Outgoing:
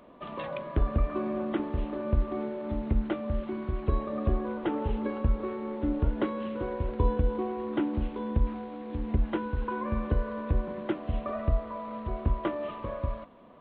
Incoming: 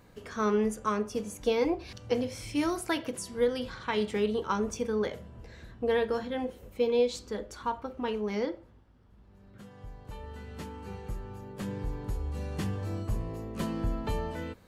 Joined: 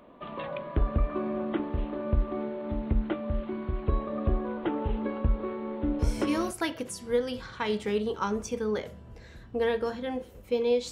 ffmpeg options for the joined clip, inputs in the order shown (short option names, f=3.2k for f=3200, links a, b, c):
-filter_complex "[0:a]apad=whole_dur=10.91,atrim=end=10.91,atrim=end=6.51,asetpts=PTS-STARTPTS[a];[1:a]atrim=start=2.27:end=7.19,asetpts=PTS-STARTPTS[b];[a][b]acrossfade=d=0.52:c1=log:c2=log"